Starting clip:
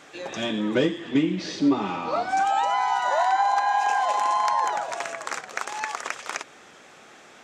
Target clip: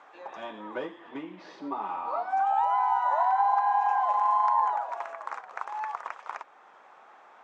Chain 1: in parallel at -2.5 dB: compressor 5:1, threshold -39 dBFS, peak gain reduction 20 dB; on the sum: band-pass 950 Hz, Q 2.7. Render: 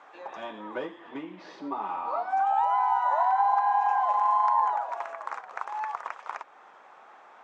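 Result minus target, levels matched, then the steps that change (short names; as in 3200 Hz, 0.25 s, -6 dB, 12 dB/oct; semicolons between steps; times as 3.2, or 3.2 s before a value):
compressor: peak gain reduction -9 dB
change: compressor 5:1, threshold -50.5 dBFS, peak gain reduction 29 dB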